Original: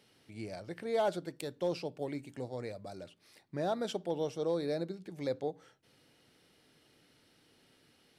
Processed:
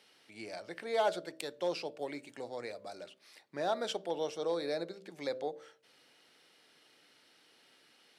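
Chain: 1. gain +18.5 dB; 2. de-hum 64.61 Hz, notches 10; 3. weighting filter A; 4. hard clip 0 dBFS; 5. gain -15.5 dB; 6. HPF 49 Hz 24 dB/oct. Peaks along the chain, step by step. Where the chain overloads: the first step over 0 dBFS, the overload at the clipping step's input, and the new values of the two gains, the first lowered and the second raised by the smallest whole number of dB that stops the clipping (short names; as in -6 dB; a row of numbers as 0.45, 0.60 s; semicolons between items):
-4.0, -3.0, -3.0, -3.0, -18.5, -19.0 dBFS; no overload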